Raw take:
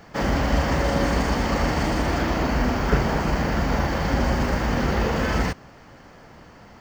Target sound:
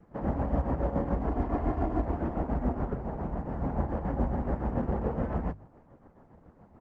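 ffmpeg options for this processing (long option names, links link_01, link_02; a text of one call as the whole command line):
ffmpeg -i in.wav -filter_complex "[0:a]bandreject=frequency=50:width_type=h:width=6,bandreject=frequency=100:width_type=h:width=6,bandreject=frequency=150:width_type=h:width=6,acrusher=samples=3:mix=1:aa=0.000001,adynamicequalizer=threshold=0.0141:dfrequency=760:dqfactor=2:tfrequency=760:tqfactor=2:attack=5:release=100:ratio=0.375:range=2:mode=boostabove:tftype=bell,tremolo=f=7.1:d=0.57,asplit=3[link_01][link_02][link_03];[link_01]afade=type=out:start_time=2.9:duration=0.02[link_04];[link_02]acompressor=threshold=-23dB:ratio=12,afade=type=in:start_time=2.9:duration=0.02,afade=type=out:start_time=3.59:duration=0.02[link_05];[link_03]afade=type=in:start_time=3.59:duration=0.02[link_06];[link_04][link_05][link_06]amix=inputs=3:normalize=0,lowpass=1000,lowshelf=frequency=440:gain=5,asplit=3[link_07][link_08][link_09];[link_07]afade=type=out:start_time=1.27:duration=0.02[link_10];[link_08]aecho=1:1:2.9:0.64,afade=type=in:start_time=1.27:duration=0.02,afade=type=out:start_time=2.04:duration=0.02[link_11];[link_09]afade=type=in:start_time=2.04:duration=0.02[link_12];[link_10][link_11][link_12]amix=inputs=3:normalize=0,volume=-8dB" -ar 48000 -c:a libopus -b:a 12k out.opus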